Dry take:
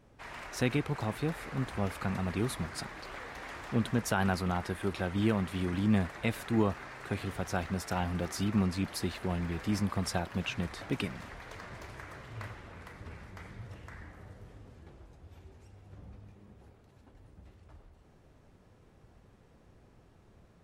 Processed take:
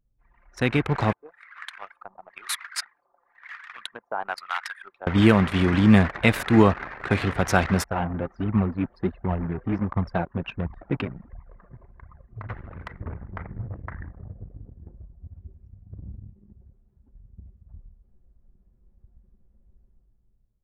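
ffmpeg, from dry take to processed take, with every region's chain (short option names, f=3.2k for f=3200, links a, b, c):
-filter_complex "[0:a]asettb=1/sr,asplit=3[a][b][c];[a]atrim=end=1.134[d];[b]atrim=start=1.13:end=5.07,asetpts=PTS-STARTPTS,afade=t=in:d=0.004:c=qsin,afade=t=out:st=3.936:d=0.004:c=qsin,highpass=1k,acrossover=split=930[e][f];[e]aeval=exprs='val(0)*(1-1/2+1/2*cos(2*PI*1*n/s))':c=same[g];[f]aeval=exprs='val(0)*(1-1/2-1/2*cos(2*PI*1*n/s))':c=same[h];[g][h]amix=inputs=2:normalize=0[i];[c]atrim=start=5.066[j];[d][i]acrossfade=d=0.004:c1=hsin:c2=qsin[k];[k][j]acrossfade=d=0.004:c1=qsin:c2=hsin,asettb=1/sr,asplit=3[l][m][n];[l]atrim=end=7.844[o];[m]atrim=start=7.84:end=12.49,asetpts=PTS-STARTPTS,afade=t=in:d=0.004:c=qsin,afade=t=out:st=4.646:d=0.004:c=qsin,lowpass=f=1.1k:p=1,flanger=delay=0.9:depth=7.2:regen=34:speed=1.4:shape=sinusoidal,equalizer=f=180:t=o:w=2.9:g=-2[p];[n]atrim=start=12.486[q];[o][p]acrossfade=d=0.004:c1=hsin:c2=qsin[r];[r][q]acrossfade=d=0.004:c1=qsin:c2=hsin,asettb=1/sr,asplit=3[s][t][u];[s]atrim=end=13.024[v];[t]atrim=start=13.02:end=15.38,asetpts=PTS-STARTPTS,afade=t=in:d=0.004:c=qsin,afade=t=out:st=2.356:d=0.004:c=qsin,lowpass=2.1k,equalizer=f=780:t=o:w=1.4:g=2[w];[u]atrim=start=15.376[x];[v][w]acrossfade=d=0.004:c1=hsin:c2=qsin[y];[y][x]acrossfade=d=0.004:c1=qsin:c2=hsin,dynaudnorm=f=140:g=11:m=12.5dB,anlmdn=25.1,equalizer=f=1.8k:t=o:w=1.8:g=3.5"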